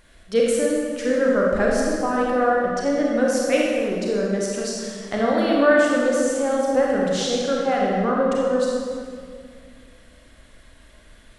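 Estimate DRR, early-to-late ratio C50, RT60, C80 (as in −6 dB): −3.5 dB, −1.5 dB, 2.2 s, 0.5 dB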